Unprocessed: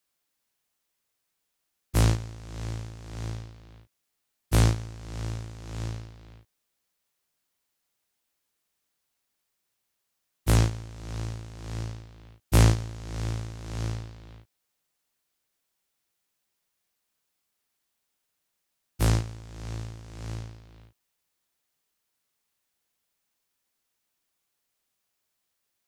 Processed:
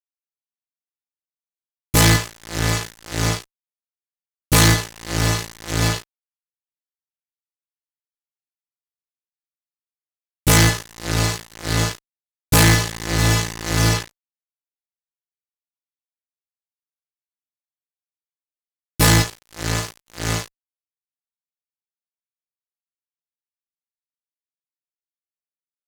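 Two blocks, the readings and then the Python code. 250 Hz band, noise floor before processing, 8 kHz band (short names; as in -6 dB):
+10.5 dB, -80 dBFS, +17.0 dB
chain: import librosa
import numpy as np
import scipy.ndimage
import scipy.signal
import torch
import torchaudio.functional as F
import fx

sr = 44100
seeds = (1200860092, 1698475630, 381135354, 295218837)

y = fx.stiff_resonator(x, sr, f0_hz=150.0, decay_s=0.3, stiffness=0.008)
y = fx.fuzz(y, sr, gain_db=49.0, gate_db=-54.0)
y = F.gain(torch.from_numpy(y), 2.5).numpy()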